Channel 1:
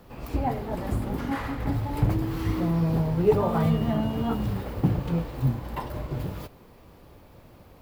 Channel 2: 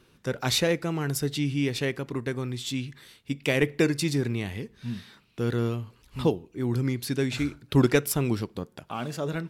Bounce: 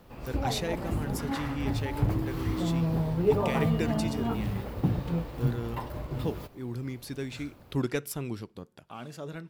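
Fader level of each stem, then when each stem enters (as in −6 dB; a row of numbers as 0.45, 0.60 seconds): −3.5, −9.0 decibels; 0.00, 0.00 seconds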